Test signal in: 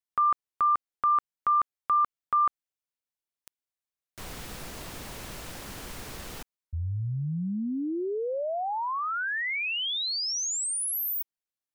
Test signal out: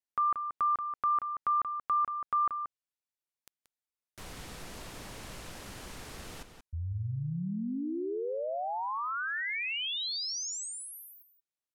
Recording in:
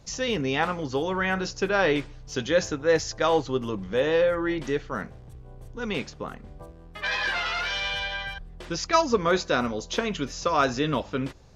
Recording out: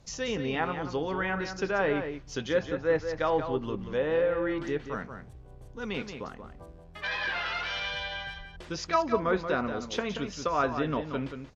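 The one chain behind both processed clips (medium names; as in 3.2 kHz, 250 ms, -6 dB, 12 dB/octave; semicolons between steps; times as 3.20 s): low-pass that closes with the level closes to 2.2 kHz, closed at -20.5 dBFS; echo from a far wall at 31 m, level -8 dB; trim -4.5 dB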